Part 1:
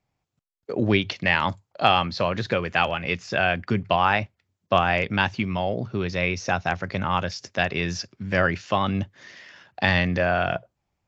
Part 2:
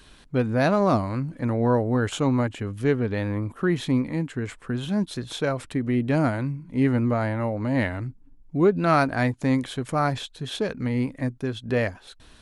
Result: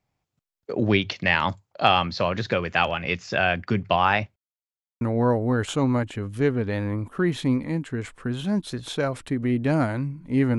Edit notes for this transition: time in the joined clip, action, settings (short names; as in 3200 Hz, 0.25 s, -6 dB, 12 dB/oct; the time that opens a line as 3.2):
part 1
4.36–5.01 mute
5.01 switch to part 2 from 1.45 s